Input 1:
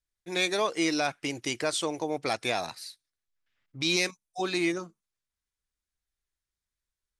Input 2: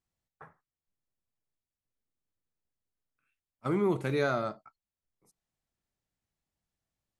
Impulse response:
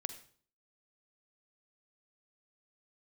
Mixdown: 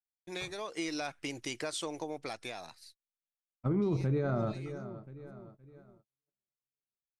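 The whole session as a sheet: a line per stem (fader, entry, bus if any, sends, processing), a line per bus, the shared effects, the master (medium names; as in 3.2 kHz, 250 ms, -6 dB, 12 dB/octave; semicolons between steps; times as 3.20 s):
-4.0 dB, 0.00 s, no send, no echo send, compression 4:1, threshold -29 dBFS, peak gain reduction 7 dB; auto duck -15 dB, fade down 1.65 s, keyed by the second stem
-3.0 dB, 0.00 s, no send, echo send -17.5 dB, tilt EQ -4.5 dB/octave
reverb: none
echo: feedback delay 514 ms, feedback 47%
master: gate -54 dBFS, range -43 dB; peak limiter -23.5 dBFS, peak gain reduction 10.5 dB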